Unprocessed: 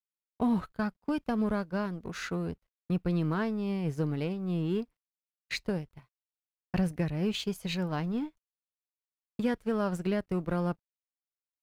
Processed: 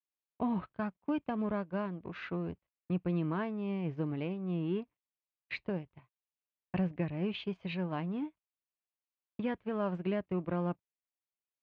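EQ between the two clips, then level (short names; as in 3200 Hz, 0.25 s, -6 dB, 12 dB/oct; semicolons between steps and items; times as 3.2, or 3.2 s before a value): speaker cabinet 100–2800 Hz, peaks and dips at 150 Hz -5 dB, 230 Hz -6 dB, 460 Hz -6 dB, 790 Hz -3 dB, 1400 Hz -7 dB, 1900 Hz -4 dB; 0.0 dB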